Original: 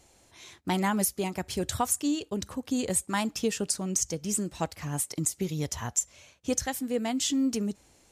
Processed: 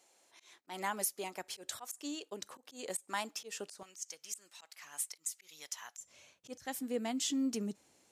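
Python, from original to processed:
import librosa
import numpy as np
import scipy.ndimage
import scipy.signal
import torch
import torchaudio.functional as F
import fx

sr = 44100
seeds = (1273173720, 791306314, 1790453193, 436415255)

y = fx.auto_swell(x, sr, attack_ms=144.0)
y = fx.highpass(y, sr, hz=fx.steps((0.0, 440.0), (3.83, 1300.0), (6.01, 160.0)), slope=12)
y = y * librosa.db_to_amplitude(-6.5)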